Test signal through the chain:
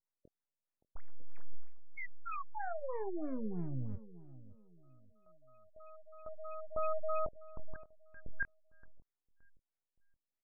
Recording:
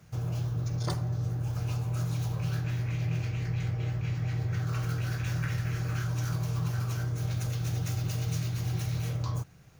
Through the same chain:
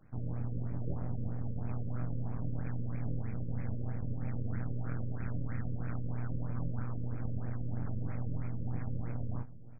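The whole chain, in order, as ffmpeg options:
-filter_complex "[0:a]highshelf=f=3.5k:t=q:w=3:g=7,aeval=exprs='max(val(0),0)':c=same,asplit=2[a][b];[b]adelay=23,volume=-9dB[c];[a][c]amix=inputs=2:normalize=0,asplit=2[d][e];[e]adelay=571,lowpass=f=820:p=1,volume=-16dB,asplit=2[f][g];[g]adelay=571,lowpass=f=820:p=1,volume=0.35,asplit=2[h][i];[i]adelay=571,lowpass=f=820:p=1,volume=0.35[j];[d][f][h][j]amix=inputs=4:normalize=0,afftfilt=real='re*lt(b*sr/1024,570*pow(2600/570,0.5+0.5*sin(2*PI*3.1*pts/sr)))':imag='im*lt(b*sr/1024,570*pow(2600/570,0.5+0.5*sin(2*PI*3.1*pts/sr)))':win_size=1024:overlap=0.75,volume=-1.5dB"

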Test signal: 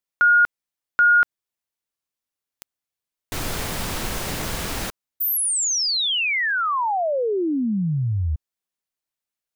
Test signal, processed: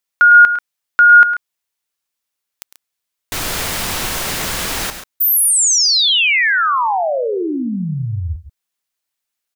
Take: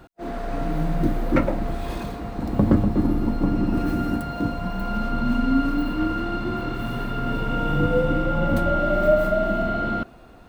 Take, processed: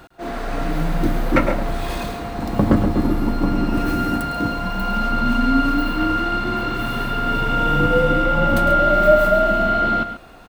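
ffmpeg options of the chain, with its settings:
-af "tiltshelf=f=690:g=-4,aecho=1:1:105|137:0.251|0.251,volume=4.5dB"

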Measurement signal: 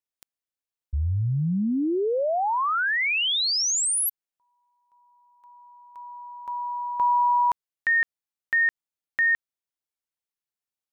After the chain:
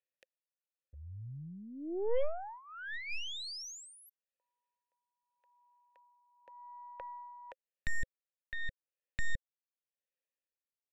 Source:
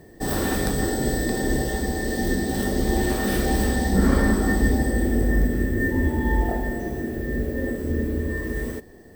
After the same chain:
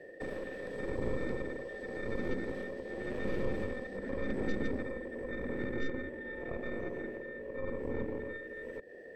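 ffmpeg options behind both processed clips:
-filter_complex "[0:a]tremolo=f=0.88:d=0.74,asplit=3[a][b][c];[a]bandpass=f=530:t=q:w=8,volume=0dB[d];[b]bandpass=f=1.84k:t=q:w=8,volume=-6dB[e];[c]bandpass=f=2.48k:t=q:w=8,volume=-9dB[f];[d][e][f]amix=inputs=3:normalize=0,aeval=exprs='0.0891*(cos(1*acos(clip(val(0)/0.0891,-1,1)))-cos(1*PI/2))+0.00398*(cos(5*acos(clip(val(0)/0.0891,-1,1)))-cos(5*PI/2))+0.0141*(cos(6*acos(clip(val(0)/0.0891,-1,1)))-cos(6*PI/2))':c=same,acrossover=split=330[g][h];[h]acompressor=threshold=-49dB:ratio=6:attack=8.3:release=157:knee=6:detection=rms[i];[g][i]amix=inputs=2:normalize=0,volume=8dB"

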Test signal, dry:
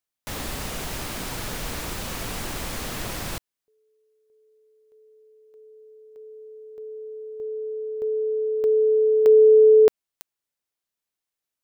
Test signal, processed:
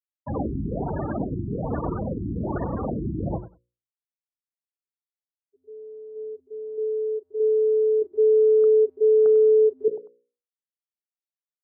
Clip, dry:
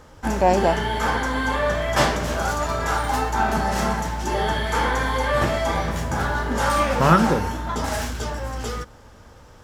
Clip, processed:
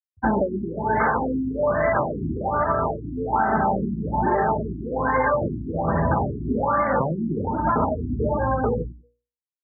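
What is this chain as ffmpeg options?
-af "asuperstop=centerf=3200:order=4:qfactor=1.4,lowshelf=f=77:g=-8,afftfilt=real='re*gte(hypot(re,im),0.0501)':imag='im*gte(hypot(re,im),0.0501)':win_size=1024:overlap=0.75,bandreject=f=60:t=h:w=6,bandreject=f=120:t=h:w=6,bandreject=f=180:t=h:w=6,bandreject=f=240:t=h:w=6,bandreject=f=300:t=h:w=6,bandreject=f=360:t=h:w=6,bandreject=f=420:t=h:w=6,bandreject=f=480:t=h:w=6,bandreject=f=540:t=h:w=6,acompressor=threshold=-25dB:ratio=16:attack=0.51:release=352:knee=1:detection=rms,highpass=f=49:w=0.5412,highpass=f=49:w=1.3066,acontrast=40,aecho=1:1:96|192:0.158|0.0254,afftfilt=real='re*lt(b*sr/1024,370*pow(2300/370,0.5+0.5*sin(2*PI*1.2*pts/sr)))':imag='im*lt(b*sr/1024,370*pow(2300/370,0.5+0.5*sin(2*PI*1.2*pts/sr)))':win_size=1024:overlap=0.75,volume=6.5dB"

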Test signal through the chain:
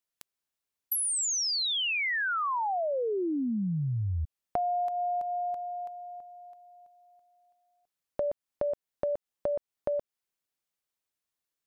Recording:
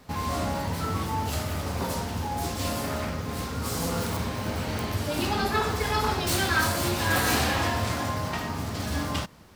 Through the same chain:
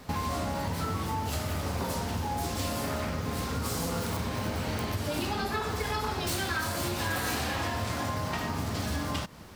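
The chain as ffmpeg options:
-af "acompressor=threshold=-33dB:ratio=6,volume=4.5dB"

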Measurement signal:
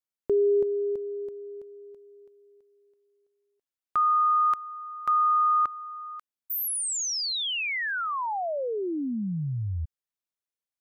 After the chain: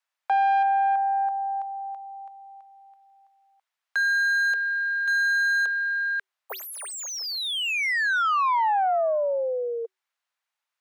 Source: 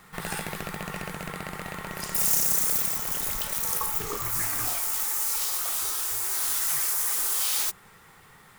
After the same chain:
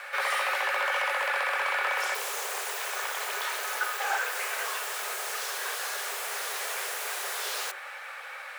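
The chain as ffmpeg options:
-filter_complex "[0:a]asplit=2[a][b];[b]highpass=f=720:p=1,volume=32dB,asoftclip=type=tanh:threshold=-6.5dB[c];[a][c]amix=inputs=2:normalize=0,lowpass=f=1.3k:p=1,volume=-6dB,afreqshift=380,volume=-7.5dB"

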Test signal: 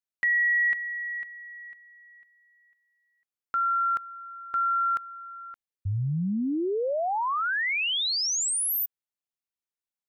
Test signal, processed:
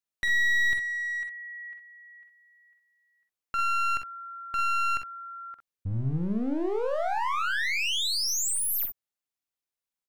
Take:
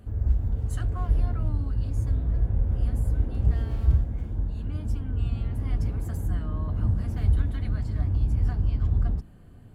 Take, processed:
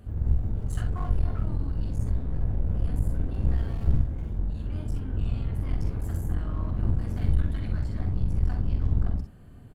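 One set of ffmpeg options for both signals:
-af "aeval=exprs='clip(val(0),-1,0.0237)':c=same,aecho=1:1:46|61:0.398|0.355"

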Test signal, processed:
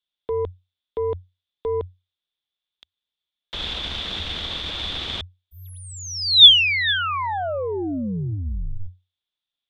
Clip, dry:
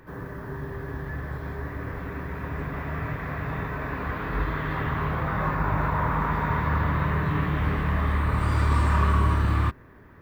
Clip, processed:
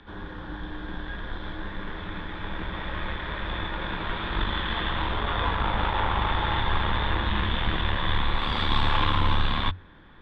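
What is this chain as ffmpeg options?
-af "aeval=exprs='0.299*(cos(1*acos(clip(val(0)/0.299,-1,1)))-cos(1*PI/2))+0.0473*(cos(4*acos(clip(val(0)/0.299,-1,1)))-cos(4*PI/2))':c=same,afreqshift=-91,lowpass=f=3.5k:t=q:w=12,volume=-1dB"

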